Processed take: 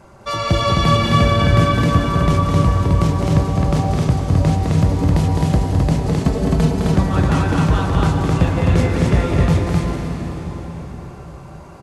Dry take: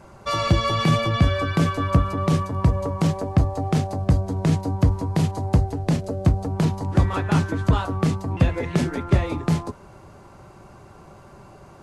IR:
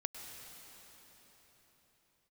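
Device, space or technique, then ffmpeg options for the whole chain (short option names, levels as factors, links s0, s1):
cathedral: -filter_complex "[1:a]atrim=start_sample=2205[s0];[0:a][s0]afir=irnorm=-1:irlink=0,asettb=1/sr,asplit=3[s1][s2][s3];[s1]atrim=end=6.074[s4];[s2]atrim=start=6.07:end=6.8,asetpts=PTS-STARTPTS,afade=t=in:d=0.004:c=qsin,afade=t=out:st=0.726:d=0.004:c=qsin,aecho=1:1:4.6:0.7,atrim=end_sample=32193[s5];[s3]atrim=start=6.796[s6];[s4][s5]acrossfade=d=0.004:c1=hsin:c2=qsin[s7];[s7][s6]acrossfade=d=0.004:c1=qsin:c2=hsin,aecho=1:1:209.9|262.4:0.562|0.794,volume=1.5"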